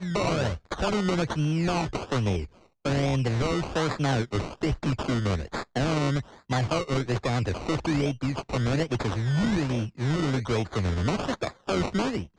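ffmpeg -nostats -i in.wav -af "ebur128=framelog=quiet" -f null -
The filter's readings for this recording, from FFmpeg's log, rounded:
Integrated loudness:
  I:         -27.5 LUFS
  Threshold: -37.5 LUFS
Loudness range:
  LRA:         0.8 LU
  Threshold: -47.5 LUFS
  LRA low:   -28.0 LUFS
  LRA high:  -27.2 LUFS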